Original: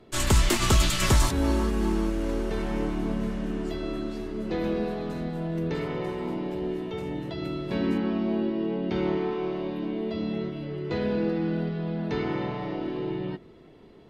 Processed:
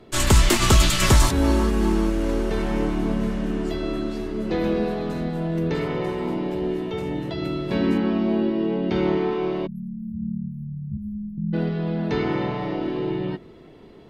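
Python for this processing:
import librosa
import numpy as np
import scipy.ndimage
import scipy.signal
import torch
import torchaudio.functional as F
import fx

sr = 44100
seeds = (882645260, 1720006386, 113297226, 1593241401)

y = fx.spec_erase(x, sr, start_s=9.67, length_s=1.86, low_hz=220.0, high_hz=11000.0)
y = fx.fixed_phaser(y, sr, hz=560.0, stages=6, at=(10.97, 11.38))
y = y * 10.0 ** (5.0 / 20.0)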